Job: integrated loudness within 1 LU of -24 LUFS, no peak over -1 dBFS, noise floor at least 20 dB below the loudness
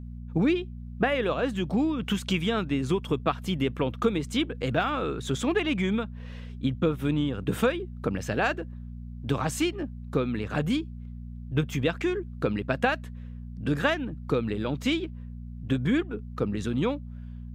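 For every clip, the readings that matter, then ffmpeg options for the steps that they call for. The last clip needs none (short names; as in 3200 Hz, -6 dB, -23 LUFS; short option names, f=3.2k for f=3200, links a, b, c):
hum 60 Hz; harmonics up to 240 Hz; hum level -36 dBFS; loudness -28.5 LUFS; peak -10.0 dBFS; loudness target -24.0 LUFS
-> -af "bandreject=f=60:t=h:w=4,bandreject=f=120:t=h:w=4,bandreject=f=180:t=h:w=4,bandreject=f=240:t=h:w=4"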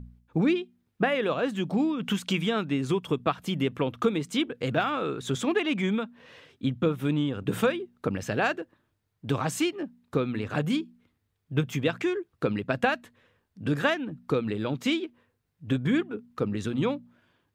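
hum none; loudness -28.5 LUFS; peak -9.5 dBFS; loudness target -24.0 LUFS
-> -af "volume=4.5dB"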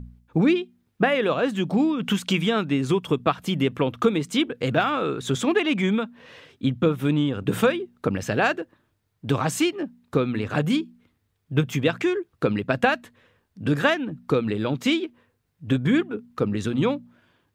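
loudness -24.0 LUFS; peak -5.0 dBFS; noise floor -72 dBFS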